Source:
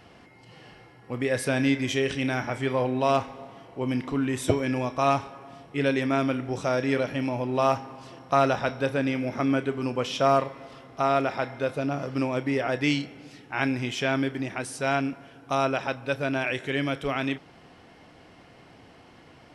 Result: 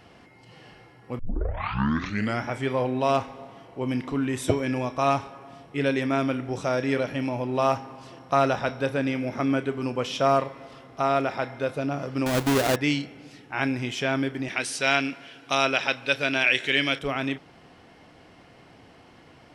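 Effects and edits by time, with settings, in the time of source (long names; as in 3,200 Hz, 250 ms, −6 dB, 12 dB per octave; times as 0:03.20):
0:01.19: tape start 1.27 s
0:12.26–0:12.76: each half-wave held at its own peak
0:14.48–0:16.99: meter weighting curve D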